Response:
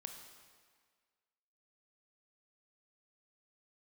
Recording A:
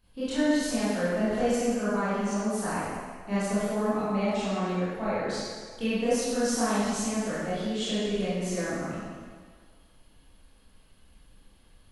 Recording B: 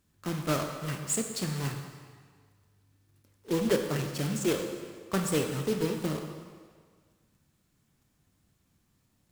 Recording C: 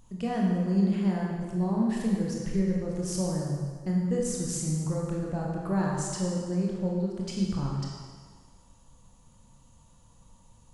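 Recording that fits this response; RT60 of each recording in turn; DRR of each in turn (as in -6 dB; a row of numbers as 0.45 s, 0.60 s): B; 1.7 s, 1.7 s, 1.7 s; -12.5 dB, 4.0 dB, -2.5 dB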